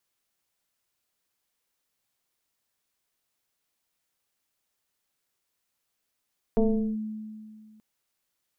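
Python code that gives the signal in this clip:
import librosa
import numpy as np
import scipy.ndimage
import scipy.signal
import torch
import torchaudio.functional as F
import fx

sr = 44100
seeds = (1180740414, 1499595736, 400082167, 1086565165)

y = fx.fm2(sr, length_s=1.23, level_db=-17.0, carrier_hz=216.0, ratio=1.06, index=1.5, index_s=0.4, decay_s=2.1, shape='linear')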